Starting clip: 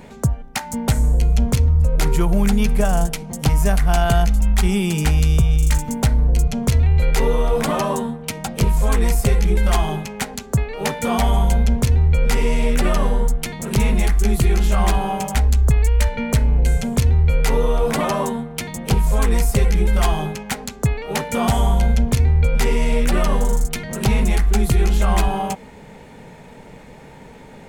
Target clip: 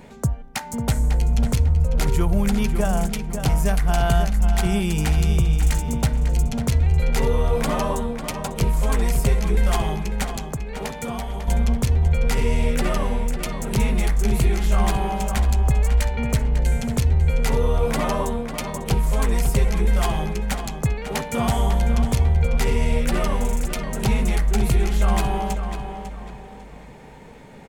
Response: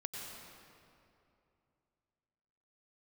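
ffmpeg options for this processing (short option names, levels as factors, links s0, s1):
-filter_complex "[0:a]asettb=1/sr,asplit=3[s0][s1][s2];[s0]atrim=end=10.424[s3];[s1]atrim=start=10.42:end=11.48,asetpts=PTS-STARTPTS,afade=t=in:d=0.004:c=qsin,afade=t=out:st=1.056:d=0.004:c=qsin,acompressor=threshold=0.0708:ratio=6[s4];[s2]atrim=start=11.476[s5];[s3][s4]acrossfade=d=0.004:c1=hsin:c2=qsin[s6];[s6][s5]acrossfade=d=0.004:c1=qsin:c2=hsin,asplit=2[s7][s8];[s8]adelay=548,lowpass=f=4400:p=1,volume=0.398,asplit=2[s9][s10];[s10]adelay=548,lowpass=f=4400:p=1,volume=0.35,asplit=2[s11][s12];[s12]adelay=548,lowpass=f=4400:p=1,volume=0.35,asplit=2[s13][s14];[s14]adelay=548,lowpass=f=4400:p=1,volume=0.35[s15];[s7][s9][s11][s13][s15]amix=inputs=5:normalize=0,volume=0.668"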